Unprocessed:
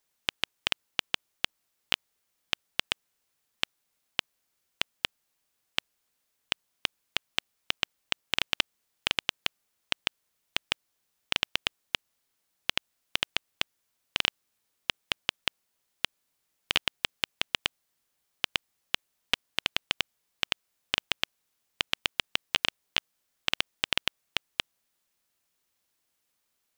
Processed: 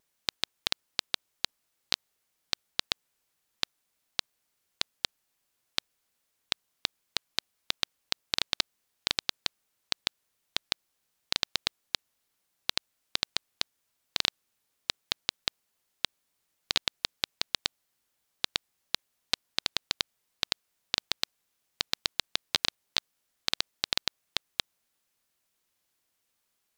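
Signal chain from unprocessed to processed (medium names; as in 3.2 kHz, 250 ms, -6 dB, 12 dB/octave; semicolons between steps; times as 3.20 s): vibrato 8.4 Hz 98 cents; loudspeaker Doppler distortion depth 0.4 ms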